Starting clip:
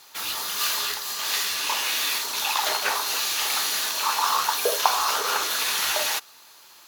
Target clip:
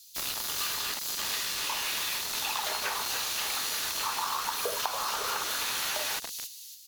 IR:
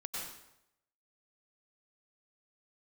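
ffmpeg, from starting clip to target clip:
-filter_complex "[0:a]asplit=5[link_01][link_02][link_03][link_04][link_05];[link_02]adelay=281,afreqshift=65,volume=-10dB[link_06];[link_03]adelay=562,afreqshift=130,volume=-18.6dB[link_07];[link_04]adelay=843,afreqshift=195,volume=-27.3dB[link_08];[link_05]adelay=1124,afreqshift=260,volume=-35.9dB[link_09];[link_01][link_06][link_07][link_08][link_09]amix=inputs=5:normalize=0,acrossover=split=110|3800[link_10][link_11][link_12];[link_11]acrusher=bits=4:mix=0:aa=0.000001[link_13];[link_10][link_13][link_12]amix=inputs=3:normalize=0,acompressor=threshold=-29dB:ratio=5"

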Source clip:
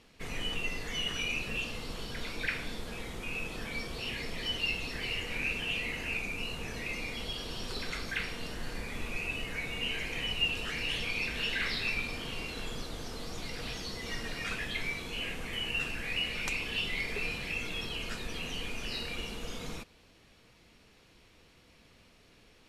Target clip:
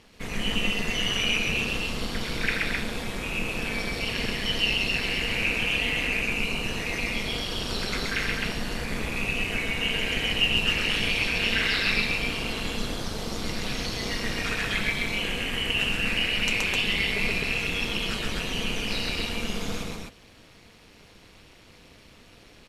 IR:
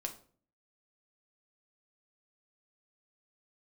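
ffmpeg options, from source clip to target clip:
-filter_complex "[0:a]asplit=2[link_01][link_02];[link_02]aecho=0:1:125.4|259.5:0.794|0.708[link_03];[link_01][link_03]amix=inputs=2:normalize=0,tremolo=f=210:d=0.71,volume=8.5dB"

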